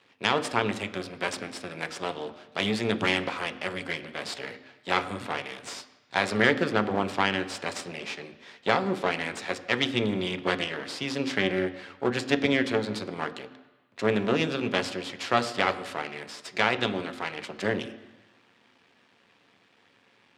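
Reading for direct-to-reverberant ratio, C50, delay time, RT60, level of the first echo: 8.5 dB, 14.5 dB, no echo audible, 1.2 s, no echo audible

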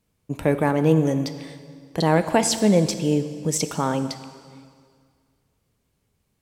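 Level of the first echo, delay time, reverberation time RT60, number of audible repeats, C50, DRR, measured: no echo audible, no echo audible, 2.0 s, no echo audible, 11.0 dB, 10.0 dB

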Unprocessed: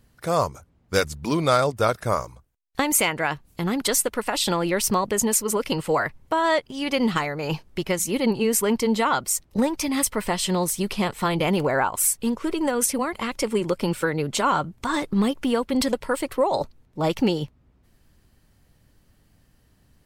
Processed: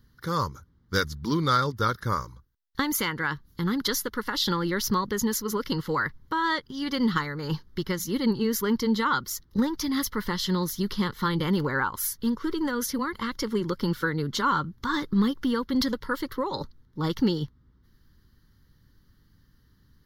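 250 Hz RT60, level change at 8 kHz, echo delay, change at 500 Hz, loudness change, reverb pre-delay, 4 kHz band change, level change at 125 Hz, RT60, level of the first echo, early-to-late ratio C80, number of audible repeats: no reverb audible, −10.0 dB, no echo audible, −8.0 dB, −4.0 dB, no reverb audible, −2.0 dB, −0.5 dB, no reverb audible, no echo audible, no reverb audible, no echo audible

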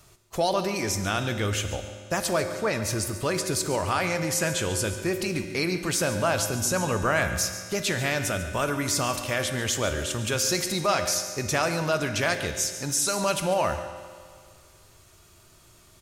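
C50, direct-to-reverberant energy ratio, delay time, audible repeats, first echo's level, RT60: 7.5 dB, 6.0 dB, 141 ms, 1, −13.5 dB, 2.0 s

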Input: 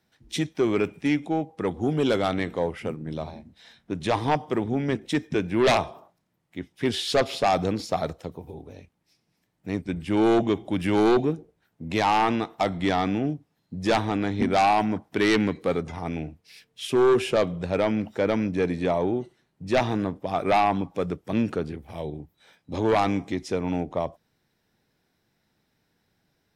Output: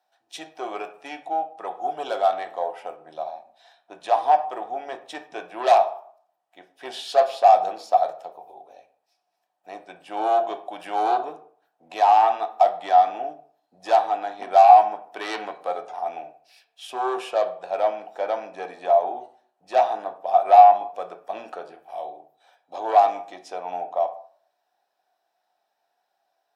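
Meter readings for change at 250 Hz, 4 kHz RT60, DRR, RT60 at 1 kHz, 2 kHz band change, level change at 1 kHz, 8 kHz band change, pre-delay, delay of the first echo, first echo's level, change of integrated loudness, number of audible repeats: −18.0 dB, 0.30 s, 5.5 dB, 0.50 s, −6.0 dB, +9.0 dB, can't be measured, 3 ms, no echo audible, no echo audible, +4.0 dB, no echo audible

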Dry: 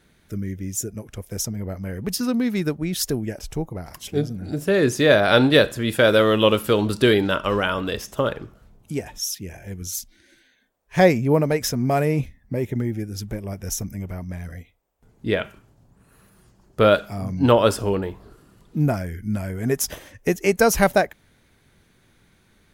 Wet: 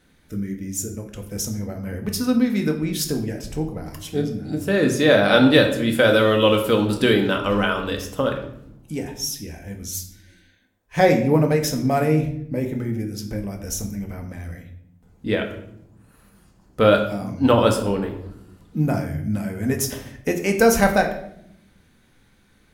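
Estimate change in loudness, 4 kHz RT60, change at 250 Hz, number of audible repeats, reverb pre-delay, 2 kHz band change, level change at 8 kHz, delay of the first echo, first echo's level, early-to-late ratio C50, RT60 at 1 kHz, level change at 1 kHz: +1.0 dB, 0.55 s, +2.0 dB, no echo audible, 4 ms, +0.5 dB, 0.0 dB, no echo audible, no echo audible, 9.0 dB, 0.60 s, +0.5 dB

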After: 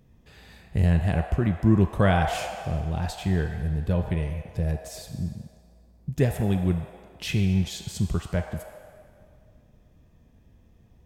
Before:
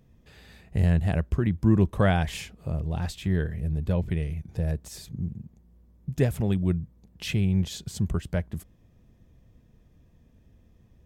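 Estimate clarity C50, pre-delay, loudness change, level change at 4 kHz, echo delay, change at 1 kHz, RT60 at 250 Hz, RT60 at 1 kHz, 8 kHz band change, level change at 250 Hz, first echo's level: 4.5 dB, 16 ms, +1.5 dB, +2.0 dB, no echo audible, +5.0 dB, 2.6 s, 2.1 s, +2.0 dB, +1.0 dB, no echo audible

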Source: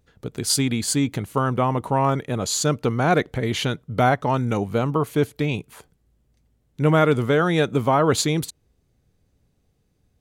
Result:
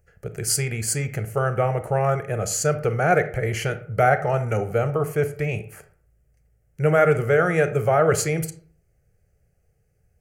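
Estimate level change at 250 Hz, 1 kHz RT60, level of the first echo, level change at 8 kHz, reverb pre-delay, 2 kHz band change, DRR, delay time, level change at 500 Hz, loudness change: −7.0 dB, 0.50 s, no echo audible, 0.0 dB, 27 ms, +2.0 dB, 10.0 dB, no echo audible, +1.5 dB, −0.5 dB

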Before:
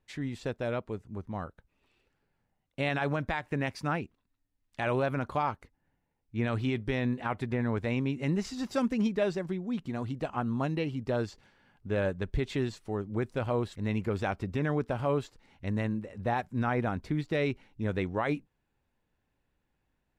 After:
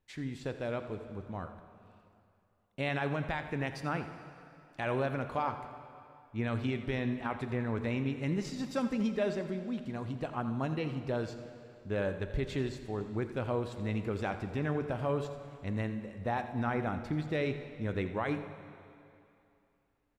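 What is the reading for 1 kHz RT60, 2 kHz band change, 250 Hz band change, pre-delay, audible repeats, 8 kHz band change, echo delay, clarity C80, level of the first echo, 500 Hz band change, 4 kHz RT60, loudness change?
2.7 s, −3.0 dB, −3.0 dB, 20 ms, 1, −3.0 dB, 85 ms, 9.0 dB, −14.0 dB, −3.0 dB, 2.4 s, −3.0 dB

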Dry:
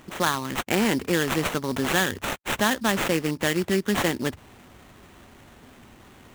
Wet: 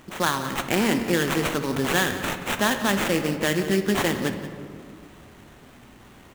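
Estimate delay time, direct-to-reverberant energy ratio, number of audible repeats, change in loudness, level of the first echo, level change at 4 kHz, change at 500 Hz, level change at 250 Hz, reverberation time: 177 ms, 7.0 dB, 1, +1.0 dB, −15.0 dB, +0.5 dB, +1.0 dB, +1.0 dB, 2.2 s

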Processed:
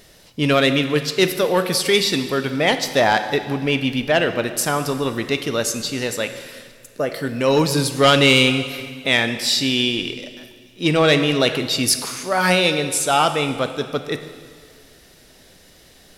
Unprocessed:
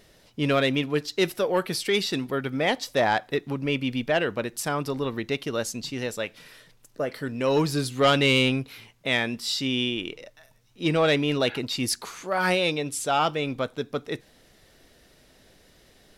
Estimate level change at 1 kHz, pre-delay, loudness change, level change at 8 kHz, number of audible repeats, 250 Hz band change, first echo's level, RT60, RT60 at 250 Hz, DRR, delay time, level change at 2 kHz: +6.5 dB, 7 ms, +7.0 dB, +10.5 dB, no echo audible, +6.0 dB, no echo audible, 1.9 s, 1.9 s, 8.5 dB, no echo audible, +7.5 dB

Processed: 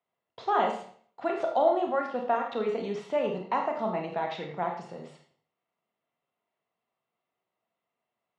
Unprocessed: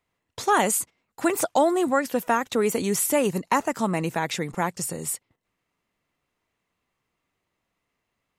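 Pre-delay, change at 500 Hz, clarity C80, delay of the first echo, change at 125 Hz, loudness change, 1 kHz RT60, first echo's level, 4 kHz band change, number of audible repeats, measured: 27 ms, −3.5 dB, 9.5 dB, no echo audible, −11.0 dB, −5.0 dB, 0.50 s, no echo audible, −10.0 dB, no echo audible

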